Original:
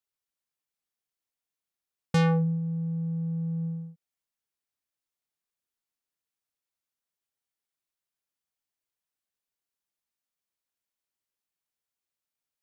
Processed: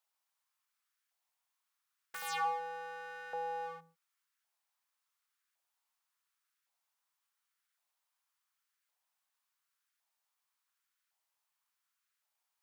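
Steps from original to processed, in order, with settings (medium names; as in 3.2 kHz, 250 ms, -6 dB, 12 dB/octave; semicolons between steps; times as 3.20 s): wavefolder -33.5 dBFS; LFO high-pass saw up 0.9 Hz 750–1500 Hz; trim +3.5 dB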